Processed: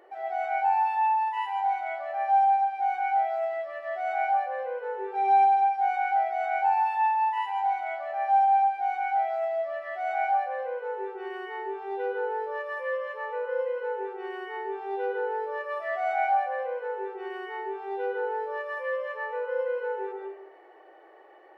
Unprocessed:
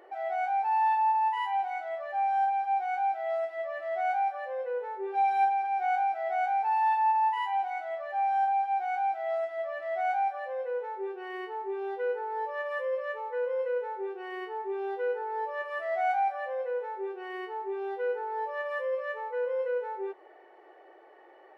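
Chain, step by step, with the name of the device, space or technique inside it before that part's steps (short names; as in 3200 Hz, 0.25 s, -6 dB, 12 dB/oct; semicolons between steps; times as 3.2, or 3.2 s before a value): bathroom (reverb RT60 0.90 s, pre-delay 0.109 s, DRR 0 dB); gain -1.5 dB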